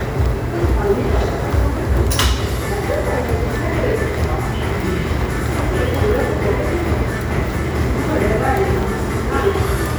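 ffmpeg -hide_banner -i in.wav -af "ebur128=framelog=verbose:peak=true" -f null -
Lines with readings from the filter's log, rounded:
Integrated loudness:
  I:         -18.7 LUFS
  Threshold: -28.7 LUFS
Loudness range:
  LRA:         1.2 LU
  Threshold: -38.9 LUFS
  LRA low:   -19.5 LUFS
  LRA high:  -18.3 LUFS
True peak:
  Peak:       -2.7 dBFS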